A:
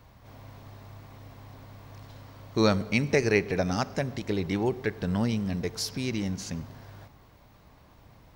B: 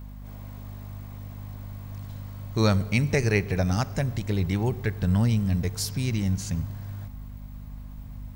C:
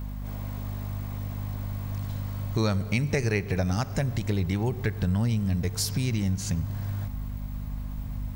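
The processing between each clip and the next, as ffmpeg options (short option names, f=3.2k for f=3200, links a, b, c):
-af "aexciter=amount=2.6:drive=4.1:freq=7.2k,asubboost=boost=5:cutoff=140,aeval=exprs='val(0)+0.0112*(sin(2*PI*50*n/s)+sin(2*PI*2*50*n/s)/2+sin(2*PI*3*50*n/s)/3+sin(2*PI*4*50*n/s)/4+sin(2*PI*5*50*n/s)/5)':c=same"
-af "acompressor=threshold=-32dB:ratio=2.5,volume=6dB"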